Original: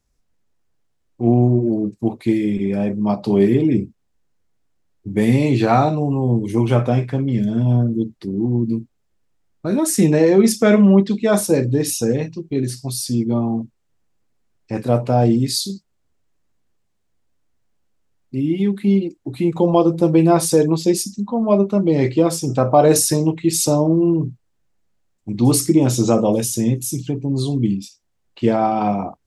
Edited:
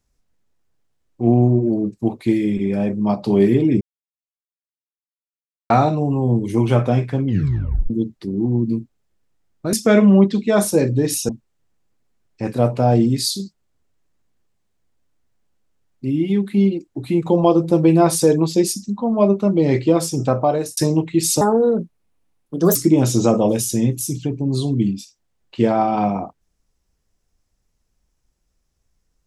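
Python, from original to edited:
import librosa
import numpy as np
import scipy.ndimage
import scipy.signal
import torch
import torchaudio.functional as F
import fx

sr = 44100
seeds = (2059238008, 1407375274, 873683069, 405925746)

y = fx.edit(x, sr, fx.silence(start_s=3.81, length_s=1.89),
    fx.tape_stop(start_s=7.26, length_s=0.64),
    fx.cut(start_s=9.73, length_s=0.76),
    fx.cut(start_s=12.05, length_s=1.54),
    fx.fade_out_span(start_s=22.55, length_s=0.52),
    fx.speed_span(start_s=23.71, length_s=1.88, speed=1.4), tone=tone)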